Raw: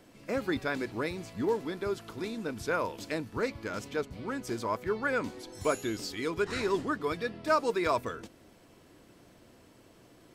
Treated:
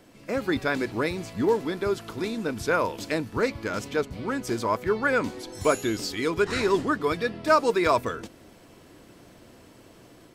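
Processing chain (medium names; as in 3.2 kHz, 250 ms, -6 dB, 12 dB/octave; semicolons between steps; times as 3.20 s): level rider gain up to 3.5 dB; trim +3 dB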